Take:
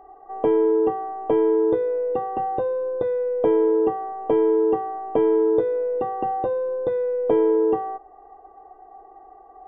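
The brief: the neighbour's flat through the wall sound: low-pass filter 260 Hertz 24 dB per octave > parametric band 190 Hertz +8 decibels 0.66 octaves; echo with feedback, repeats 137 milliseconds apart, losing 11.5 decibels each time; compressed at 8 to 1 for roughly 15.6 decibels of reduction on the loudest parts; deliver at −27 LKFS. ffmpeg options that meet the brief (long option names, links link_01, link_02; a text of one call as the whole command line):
ffmpeg -i in.wav -af "acompressor=threshold=-32dB:ratio=8,lowpass=frequency=260:width=0.5412,lowpass=frequency=260:width=1.3066,equalizer=frequency=190:width_type=o:width=0.66:gain=8,aecho=1:1:137|274|411:0.266|0.0718|0.0194,volume=22.5dB" out.wav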